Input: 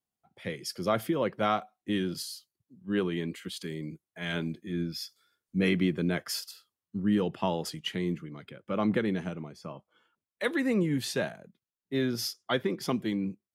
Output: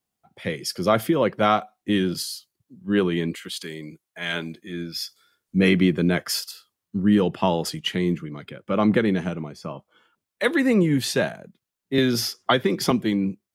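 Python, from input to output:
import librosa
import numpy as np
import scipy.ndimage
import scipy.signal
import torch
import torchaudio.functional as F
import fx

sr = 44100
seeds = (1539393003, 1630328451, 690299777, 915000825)

y = fx.low_shelf(x, sr, hz=360.0, db=-11.5, at=(3.35, 4.96))
y = fx.band_squash(y, sr, depth_pct=100, at=(11.98, 12.91))
y = F.gain(torch.from_numpy(y), 8.0).numpy()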